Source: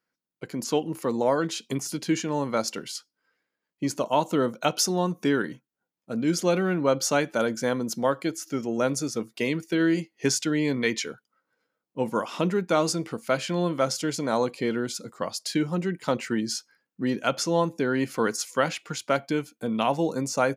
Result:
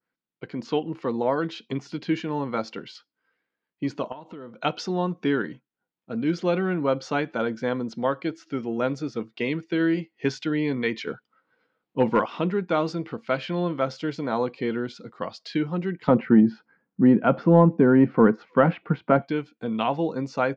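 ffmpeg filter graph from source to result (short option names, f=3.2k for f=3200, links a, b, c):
-filter_complex "[0:a]asettb=1/sr,asplit=3[a][b][c];[a]atrim=end=4.124[d];[b]atrim=start=4.12:end=4.59,asetpts=PTS-STARTPTS,afade=t=in:d=0.004:c=qsin,afade=t=out:st=0.466:d=0.004:c=qsin,acompressor=threshold=-37dB:ratio=6:attack=3.2:release=140:knee=1:detection=peak,highshelf=f=5.3k:g=-9[e];[c]atrim=start=4.586[f];[d][e]acrossfade=d=0.004:c1=hsin:c2=qsin[g];[g][f]acrossfade=d=0.004:c1=qsin:c2=hsin,asettb=1/sr,asplit=3[h][i][j];[h]atrim=end=11.074[k];[i]atrim=start=11.07:end=12.26,asetpts=PTS-STARTPTS,afade=t=in:d=0.004:c=qsin,afade=t=out:st=1.186:d=0.004:c=qsin,acontrast=70,asoftclip=type=hard:threshold=-11dB[l];[j]atrim=start=12.256[m];[k][l]acrossfade=d=0.004:c1=hsin:c2=qsin[n];[n][m]acrossfade=d=0.004:c1=qsin:c2=hsin,asettb=1/sr,asplit=3[o][p][q];[o]atrim=end=16.084[r];[p]atrim=start=16.08:end=19.22,asetpts=PTS-STARTPTS,afade=t=in:d=0.004:c=qsin,afade=t=out:st=3.136:d=0.004:c=qsin,equalizer=f=190:w=1.8:g=8,acontrast=79,lowpass=1.3k[s];[q]atrim=start=19.216[t];[r][s]acrossfade=d=0.004:c1=hsin:c2=qsin[u];[u][t]acrossfade=d=0.004:c1=qsin:c2=hsin,lowpass=f=3.9k:w=0.5412,lowpass=f=3.9k:w=1.3066,bandreject=f=580:w=12,adynamicequalizer=threshold=0.00708:dfrequency=3000:dqfactor=0.83:tfrequency=3000:tqfactor=0.83:attack=5:release=100:ratio=0.375:range=1.5:mode=cutabove:tftype=bell"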